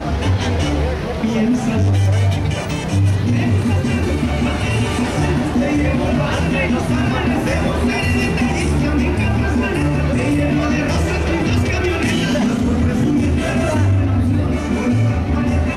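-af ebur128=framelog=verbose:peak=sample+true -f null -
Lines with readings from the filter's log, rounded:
Integrated loudness:
  I:         -17.3 LUFS
  Threshold: -27.3 LUFS
Loudness range:
  LRA:         0.8 LU
  Threshold: -37.3 LUFS
  LRA low:   -17.6 LUFS
  LRA high:  -16.9 LUFS
Sample peak:
  Peak:       -5.5 dBFS
True peak:
  Peak:       -5.5 dBFS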